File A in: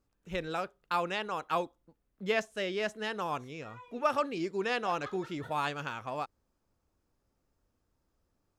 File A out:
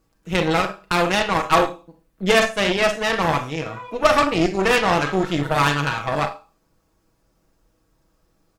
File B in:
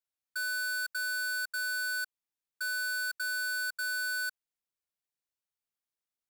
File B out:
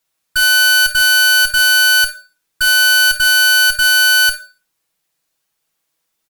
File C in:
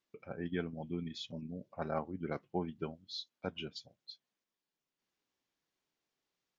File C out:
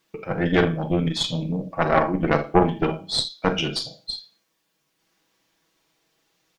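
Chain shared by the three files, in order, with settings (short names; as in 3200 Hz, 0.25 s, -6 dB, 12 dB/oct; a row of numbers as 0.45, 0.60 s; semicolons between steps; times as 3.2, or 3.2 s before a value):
comb 6.2 ms, depth 57%; Schroeder reverb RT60 0.35 s, combs from 28 ms, DRR 5 dB; added harmonics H 8 -17 dB, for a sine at -14 dBFS; normalise peaks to -2 dBFS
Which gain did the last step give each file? +11.5, +18.5, +16.5 dB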